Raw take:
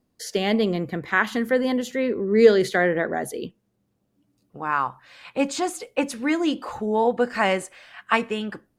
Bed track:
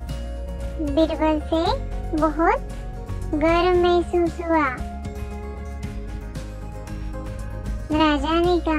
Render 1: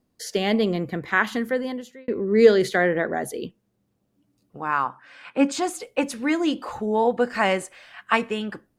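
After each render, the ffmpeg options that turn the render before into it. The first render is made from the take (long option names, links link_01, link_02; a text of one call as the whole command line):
ffmpeg -i in.wav -filter_complex "[0:a]asettb=1/sr,asplit=3[link_01][link_02][link_03];[link_01]atrim=end=4.854[link_04];[link_02]atrim=start=4.85:end=5.52,asetpts=PTS-STARTPTS,afade=type=in:duration=0.004:curve=qsin,afade=type=out:start_time=0.666:duration=0.004:curve=qsin,highpass=170,equalizer=frequency=270:width_type=q:width=4:gain=6,equalizer=frequency=1500:width_type=q:width=4:gain=7,equalizer=frequency=4000:width_type=q:width=4:gain=-8,equalizer=frequency=7000:width_type=q:width=4:gain=-7,lowpass=frequency=9600:width=0.5412,lowpass=frequency=9600:width=1.3066[link_05];[link_03]atrim=start=5.516[link_06];[link_04][link_05]acrossfade=duration=0.004:curve1=hsin:curve2=qsin[link_07];[link_07][link_06]acrossfade=duration=0.004:curve1=qsin:curve2=hsin,asplit=2[link_08][link_09];[link_08]atrim=end=2.08,asetpts=PTS-STARTPTS,afade=type=out:start_time=1.28:duration=0.8[link_10];[link_09]atrim=start=2.08,asetpts=PTS-STARTPTS,afade=type=in:duration=0.004:curve=hsin[link_11];[link_10][link_11]concat=n=2:v=0:a=1" out.wav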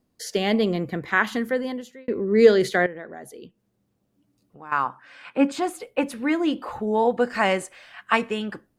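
ffmpeg -i in.wav -filter_complex "[0:a]asettb=1/sr,asplit=3[link_01][link_02][link_03];[link_01]atrim=end=2.864[link_04];[link_02]atrim=start=2.86:end=4.72,asetpts=PTS-STARTPTS,afade=type=in:duration=0.004:curve=qsin,afade=type=out:start_time=1.856:duration=0.004:curve=qsin,acompressor=threshold=-58dB:ratio=1.5:attack=3.2:release=140:knee=1:detection=peak[link_05];[link_03]atrim=start=4.716[link_06];[link_04][link_05]acrossfade=duration=0.004:curve1=hsin:curve2=qsin[link_07];[link_07][link_06]acrossfade=duration=0.004:curve1=qsin:curve2=hsin,asettb=1/sr,asplit=3[link_08][link_09][link_10];[link_08]atrim=end=5.374[link_11];[link_09]atrim=start=5.37:end=6.87,asetpts=PTS-STARTPTS,afade=type=in:duration=0.004:curve=qsin,afade=type=out:start_time=1.496:duration=0.004:curve=qsin,equalizer=frequency=6400:width_type=o:width=1.2:gain=-9[link_12];[link_10]atrim=start=6.866[link_13];[link_11][link_12]acrossfade=duration=0.004:curve1=hsin:curve2=qsin[link_14];[link_14][link_13]acrossfade=duration=0.004:curve1=qsin:curve2=hsin" out.wav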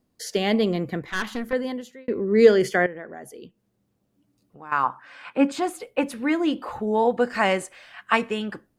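ffmpeg -i in.wav -filter_complex "[0:a]asettb=1/sr,asplit=3[link_01][link_02][link_03];[link_01]atrim=end=1.024[link_04];[link_02]atrim=start=1.02:end=1.53,asetpts=PTS-STARTPTS,afade=type=in:duration=0.004:curve=qsin,afade=type=out:start_time=0.506:duration=0.004:curve=qsin,aeval=exprs='(tanh(11.2*val(0)+0.65)-tanh(0.65))/11.2':channel_layout=same[link_05];[link_03]atrim=start=1.526[link_06];[link_04][link_05]acrossfade=duration=0.004:curve1=hsin:curve2=qsin[link_07];[link_07][link_06]acrossfade=duration=0.004:curve1=qsin:curve2=hsin,asettb=1/sr,asplit=3[link_08][link_09][link_10];[link_08]atrim=end=2.484[link_11];[link_09]atrim=start=2.48:end=3.35,asetpts=PTS-STARTPTS,afade=type=in:duration=0.004:curve=qsin,afade=type=out:start_time=0.866:duration=0.004:curve=qsin,asuperstop=centerf=3900:order=4:qfactor=4[link_12];[link_10]atrim=start=3.346[link_13];[link_11][link_12]acrossfade=duration=0.004:curve1=hsin:curve2=qsin[link_14];[link_14][link_13]acrossfade=duration=0.004:curve1=qsin:curve2=hsin,asettb=1/sr,asplit=3[link_15][link_16][link_17];[link_15]atrim=end=4.834[link_18];[link_16]atrim=start=4.83:end=5.33,asetpts=PTS-STARTPTS,afade=type=in:duration=0.004:curve=qsin,afade=type=out:start_time=0.496:duration=0.004:curve=qsin,equalizer=frequency=990:width=1.2:gain=5[link_19];[link_17]atrim=start=5.326[link_20];[link_18][link_19]acrossfade=duration=0.004:curve1=hsin:curve2=qsin[link_21];[link_21][link_20]acrossfade=duration=0.004:curve1=qsin:curve2=hsin" out.wav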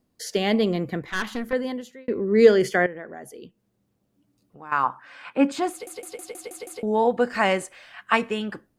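ffmpeg -i in.wav -filter_complex "[0:a]asplit=8[link_01][link_02][link_03][link_04][link_05][link_06][link_07][link_08];[link_01]atrim=end=5.872[link_09];[link_02]atrim=start=5.708:end=5.872[link_10];[link_03]atrim=start=5.708:end=5.872[link_11];[link_04]atrim=start=5.708:end=5.872[link_12];[link_05]atrim=start=5.708:end=5.872[link_13];[link_06]atrim=start=5.708:end=5.872[link_14];[link_07]atrim=start=5.708:end=5.872[link_15];[link_08]atrim=start=6.828[link_16];[link_09][link_10]acrossfade=duration=0.004:curve1=hsin:curve2=hsin[link_17];[link_17][link_11]acrossfade=duration=0.004:curve1=hsin:curve2=hsin[link_18];[link_18][link_12]acrossfade=duration=0.004:curve1=hsin:curve2=hsin[link_19];[link_19][link_13]acrossfade=duration=0.004:curve1=hsin:curve2=hsin[link_20];[link_20][link_14]acrossfade=duration=0.004:curve1=hsin:curve2=hsin[link_21];[link_21][link_15]acrossfade=duration=0.004:curve1=hsin:curve2=hsin[link_22];[link_22][link_16]acrossfade=duration=0.004:curve1=hsin:curve2=hsin" out.wav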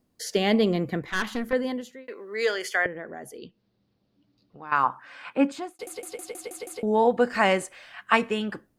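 ffmpeg -i in.wav -filter_complex "[0:a]asettb=1/sr,asplit=3[link_01][link_02][link_03];[link_01]atrim=end=2.074[link_04];[link_02]atrim=start=2.07:end=2.86,asetpts=PTS-STARTPTS,afade=type=in:duration=0.004:curve=qsin,afade=type=out:start_time=0.786:duration=0.004:curve=qsin,highpass=900[link_05];[link_03]atrim=start=2.856[link_06];[link_04][link_05]acrossfade=duration=0.004:curve1=hsin:curve2=qsin[link_07];[link_07][link_06]acrossfade=duration=0.004:curve1=qsin:curve2=hsin,asettb=1/sr,asplit=3[link_08][link_09][link_10];[link_08]atrim=end=3.384[link_11];[link_09]atrim=start=3.38:end=4.76,asetpts=PTS-STARTPTS,afade=type=in:duration=0.004:curve=qsin,afade=type=out:start_time=1.376:duration=0.004:curve=qsin,highshelf=frequency=6100:width_type=q:width=3:gain=-12[link_12];[link_10]atrim=start=4.756[link_13];[link_11][link_12]acrossfade=duration=0.004:curve1=hsin:curve2=qsin[link_14];[link_14][link_13]acrossfade=duration=0.004:curve1=qsin:curve2=hsin,asplit=2[link_15][link_16];[link_15]atrim=end=5.79,asetpts=PTS-STARTPTS,afade=type=out:start_time=5.31:duration=0.48[link_17];[link_16]atrim=start=5.79,asetpts=PTS-STARTPTS,afade=type=in:duration=0.004:curve=hsin[link_18];[link_17][link_18]concat=n=2:v=0:a=1" out.wav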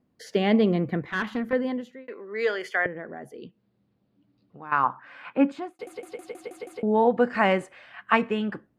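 ffmpeg -i in.wav -af "highpass=frequency=180:poles=1,bass=frequency=250:gain=7,treble=frequency=4000:gain=-15" out.wav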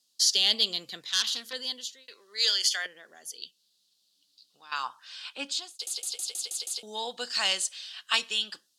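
ffmpeg -i in.wav -af "bandpass=frequency=4100:width_type=q:width=0.96:csg=0,aexciter=amount=9.4:drive=9.5:freq=3400" out.wav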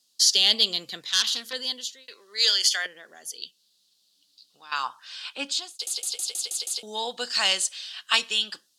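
ffmpeg -i in.wav -af "volume=4dB" out.wav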